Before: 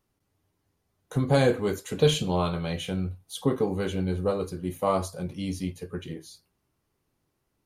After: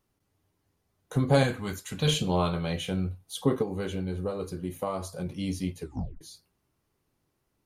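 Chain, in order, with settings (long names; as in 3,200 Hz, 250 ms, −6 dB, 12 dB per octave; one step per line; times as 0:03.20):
0:01.43–0:02.08: parametric band 440 Hz −13.5 dB 1.2 octaves
0:03.62–0:05.26: downward compressor 6 to 1, threshold −28 dBFS, peak gain reduction 9 dB
0:05.81: tape stop 0.40 s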